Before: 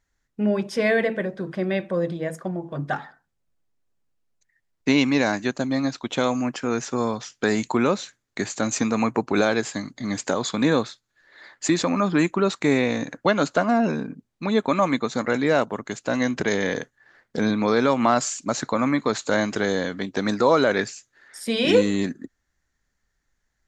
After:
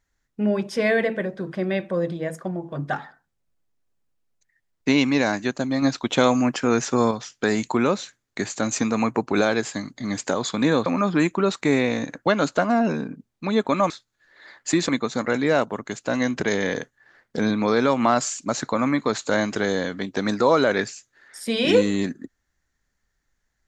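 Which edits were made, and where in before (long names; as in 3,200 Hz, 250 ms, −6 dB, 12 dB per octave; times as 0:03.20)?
0:05.82–0:07.11: clip gain +4.5 dB
0:10.86–0:11.85: move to 0:14.89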